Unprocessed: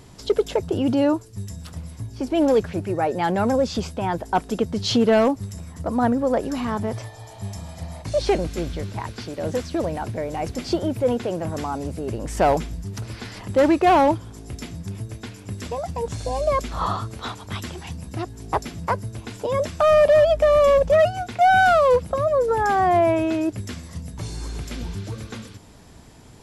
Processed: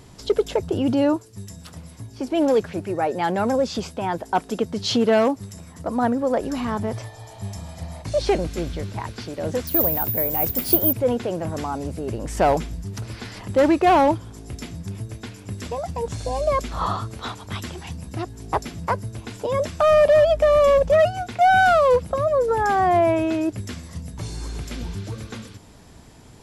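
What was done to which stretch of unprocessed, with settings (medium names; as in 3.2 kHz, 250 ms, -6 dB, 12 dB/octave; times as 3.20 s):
1.16–6.41 s: high-pass 160 Hz 6 dB/octave
9.67–10.93 s: careless resampling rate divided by 3×, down none, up zero stuff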